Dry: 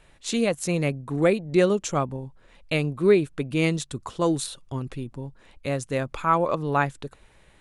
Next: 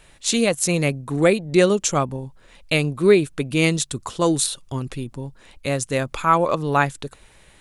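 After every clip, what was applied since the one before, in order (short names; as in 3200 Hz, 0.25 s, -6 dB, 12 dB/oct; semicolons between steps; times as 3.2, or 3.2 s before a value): high shelf 3400 Hz +8.5 dB; gain +3.5 dB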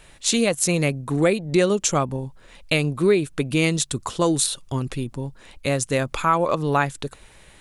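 compressor 2:1, threshold -20 dBFS, peak gain reduction 6.5 dB; gain +2 dB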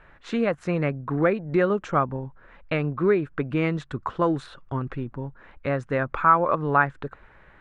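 synth low-pass 1500 Hz, resonance Q 2.4; gain -3.5 dB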